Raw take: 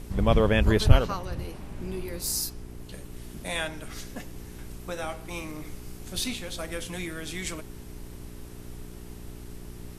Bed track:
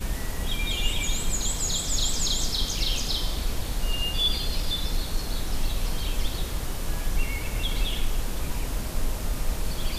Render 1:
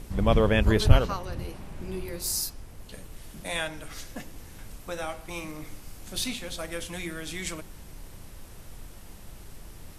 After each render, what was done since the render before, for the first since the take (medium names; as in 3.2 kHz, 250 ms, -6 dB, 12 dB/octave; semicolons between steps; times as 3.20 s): de-hum 60 Hz, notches 7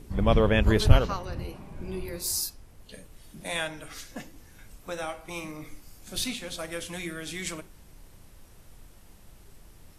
noise print and reduce 7 dB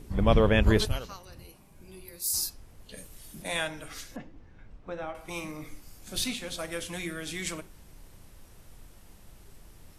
0.85–2.34 s: pre-emphasis filter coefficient 0.8; 2.96–3.41 s: treble shelf 4.2 kHz -> 6.8 kHz +11 dB; 4.16–5.15 s: tape spacing loss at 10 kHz 33 dB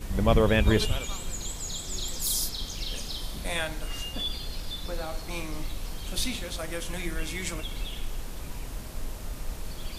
add bed track -8 dB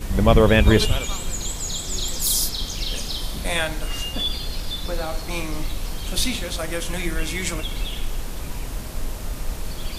trim +7 dB; peak limiter -3 dBFS, peak gain reduction 1.5 dB